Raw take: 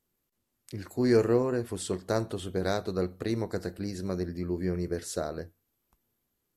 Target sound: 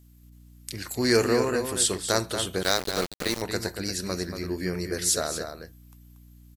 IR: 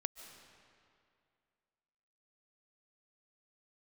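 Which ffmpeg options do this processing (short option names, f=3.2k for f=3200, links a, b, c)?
-filter_complex "[0:a]tiltshelf=f=1.3k:g=-8.5,aeval=exprs='val(0)+0.001*(sin(2*PI*60*n/s)+sin(2*PI*2*60*n/s)/2+sin(2*PI*3*60*n/s)/3+sin(2*PI*4*60*n/s)/4+sin(2*PI*5*60*n/s)/5)':c=same,asplit=2[a][b];[b]adelay=233.2,volume=-7dB,highshelf=f=4k:g=-5.25[c];[a][c]amix=inputs=2:normalize=0,asettb=1/sr,asplit=3[d][e][f];[d]atrim=end=2.634[g];[e]atrim=start=2.63:end=3.42,asetpts=PTS-STARTPTS,afade=t=in:d=0.004:c=qsin,afade=t=out:st=0.786:d=0.004:c=qsin,aeval=exprs='val(0)*gte(abs(val(0)),0.0188)':c=same[h];[f]atrim=start=3.416[i];[g][h]acrossfade=d=0.004:c1=hsin:c2=qsin[j];[j][i]acrossfade=d=0.004:c1=qsin:c2=hsin,volume=7.5dB"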